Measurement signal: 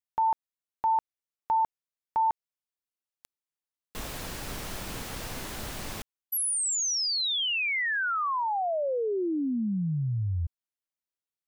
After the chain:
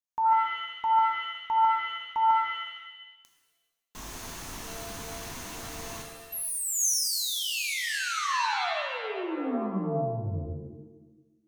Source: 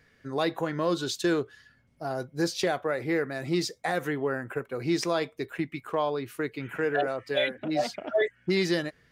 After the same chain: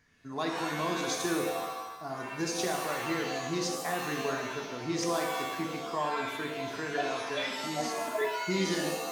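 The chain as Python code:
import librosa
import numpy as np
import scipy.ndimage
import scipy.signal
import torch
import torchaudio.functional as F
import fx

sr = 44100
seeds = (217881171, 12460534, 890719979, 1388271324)

y = fx.graphic_eq_31(x, sr, hz=(250, 500, 1000, 6300), db=(3, -8, 7, 9))
y = fx.rev_shimmer(y, sr, seeds[0], rt60_s=1.0, semitones=7, shimmer_db=-2, drr_db=2.0)
y = y * 10.0 ** (-7.0 / 20.0)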